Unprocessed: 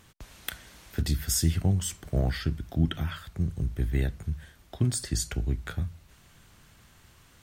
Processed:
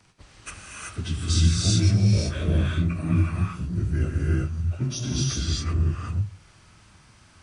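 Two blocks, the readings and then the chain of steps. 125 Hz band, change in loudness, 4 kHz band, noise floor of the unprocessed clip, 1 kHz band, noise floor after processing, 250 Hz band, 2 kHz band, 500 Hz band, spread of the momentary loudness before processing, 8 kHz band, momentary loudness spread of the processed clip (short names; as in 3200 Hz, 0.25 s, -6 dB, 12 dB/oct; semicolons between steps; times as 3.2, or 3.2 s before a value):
+6.5 dB, +5.5 dB, +6.5 dB, -58 dBFS, +5.0 dB, -55 dBFS, +5.0 dB, +3.5 dB, +3.0 dB, 13 LU, +1.5 dB, 14 LU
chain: inharmonic rescaling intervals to 89%; non-linear reverb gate 0.41 s rising, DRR -4 dB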